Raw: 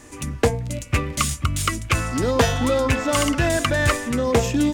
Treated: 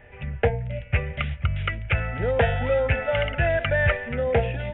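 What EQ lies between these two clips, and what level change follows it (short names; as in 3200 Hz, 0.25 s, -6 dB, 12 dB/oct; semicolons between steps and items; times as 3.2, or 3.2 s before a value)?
brick-wall FIR low-pass 4100 Hz; fixed phaser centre 1100 Hz, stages 6; 0.0 dB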